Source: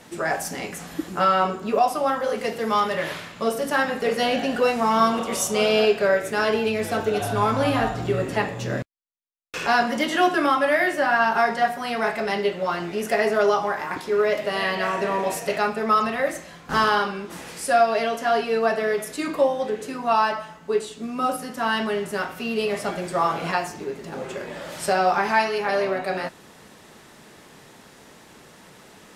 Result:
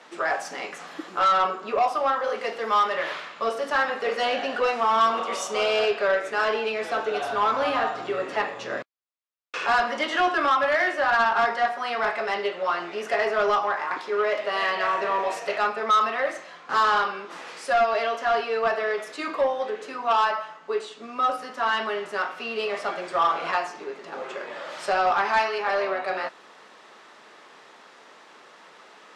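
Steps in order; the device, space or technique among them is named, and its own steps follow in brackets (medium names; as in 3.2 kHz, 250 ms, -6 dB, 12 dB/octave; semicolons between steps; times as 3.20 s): intercom (band-pass 460–4700 Hz; peaking EQ 1.2 kHz +5 dB 0.45 oct; saturation -14.5 dBFS, distortion -15 dB)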